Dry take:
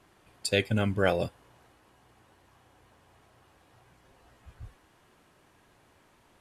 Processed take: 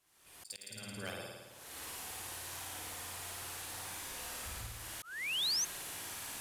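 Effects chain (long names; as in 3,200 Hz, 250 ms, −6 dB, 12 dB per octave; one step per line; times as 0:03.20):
camcorder AGC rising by 53 dB per second
first-order pre-emphasis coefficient 0.9
mains-hum notches 60/120/180/240/300/360 Hz
flutter between parallel walls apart 9.4 metres, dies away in 1.3 s
in parallel at −5.5 dB: centre clipping without the shift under −25.5 dBFS
on the sum: sound drawn into the spectrogram rise, 0:05.02–0:05.65, 1,200–6,500 Hz −28 dBFS
volume swells 443 ms
level −5 dB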